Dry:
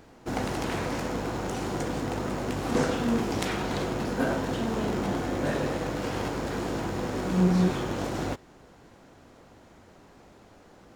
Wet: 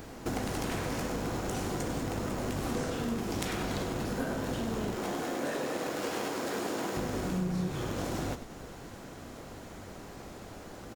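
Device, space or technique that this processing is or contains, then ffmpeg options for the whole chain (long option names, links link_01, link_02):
ASMR close-microphone chain: -filter_complex "[0:a]asettb=1/sr,asplit=3[link_01][link_02][link_03];[link_01]atrim=end=4.944[link_04];[link_02]atrim=start=4.94:end=6.97,asetpts=PTS-STARTPTS,afade=type=in:duration=0.004:curve=qsin,afade=type=out:start_time=2.026:duration=0.004:curve=qsin,highpass=290[link_05];[link_03]atrim=start=6.966[link_06];[link_04][link_05]acrossfade=duration=0.004:curve1=hsin:curve2=qsin[link_07];[link_07][link_06]acrossfade=duration=0.004:curve1=qsin:curve2=hsin,lowshelf=frequency=160:gain=3,bandreject=frequency=900:width=24,acompressor=threshold=-39dB:ratio=5,highshelf=frequency=6500:gain=4.5,highshelf=frequency=9600:gain=6,asplit=7[link_08][link_09][link_10][link_11][link_12][link_13][link_14];[link_09]adelay=99,afreqshift=-31,volume=-11dB[link_15];[link_10]adelay=198,afreqshift=-62,volume=-16.2dB[link_16];[link_11]adelay=297,afreqshift=-93,volume=-21.4dB[link_17];[link_12]adelay=396,afreqshift=-124,volume=-26.6dB[link_18];[link_13]adelay=495,afreqshift=-155,volume=-31.8dB[link_19];[link_14]adelay=594,afreqshift=-186,volume=-37dB[link_20];[link_08][link_15][link_16][link_17][link_18][link_19][link_20]amix=inputs=7:normalize=0,volume=6.5dB"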